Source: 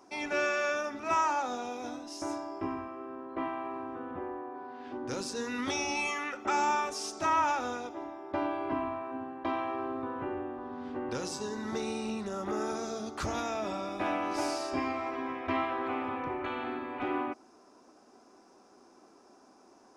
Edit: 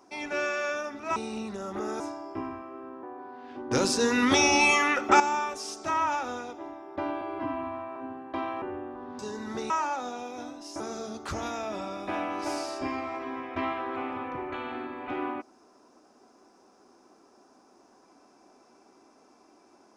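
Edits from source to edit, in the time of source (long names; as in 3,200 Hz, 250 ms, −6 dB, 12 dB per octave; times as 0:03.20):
0:01.16–0:02.26: swap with 0:11.88–0:12.72
0:03.29–0:04.39: remove
0:05.07–0:06.56: clip gain +11 dB
0:08.57–0:09.07: time-stretch 1.5×
0:09.73–0:10.25: remove
0:10.82–0:11.37: remove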